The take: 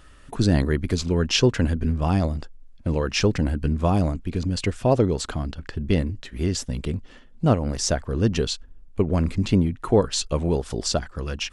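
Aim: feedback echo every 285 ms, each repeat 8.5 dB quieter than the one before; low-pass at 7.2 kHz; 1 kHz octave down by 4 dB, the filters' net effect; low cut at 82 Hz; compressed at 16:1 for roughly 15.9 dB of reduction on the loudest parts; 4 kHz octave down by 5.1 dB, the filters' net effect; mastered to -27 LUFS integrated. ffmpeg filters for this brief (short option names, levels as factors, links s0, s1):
-af "highpass=82,lowpass=7200,equalizer=f=1000:t=o:g=-5.5,equalizer=f=4000:t=o:g=-6,acompressor=threshold=0.0316:ratio=16,aecho=1:1:285|570|855|1140:0.376|0.143|0.0543|0.0206,volume=2.82"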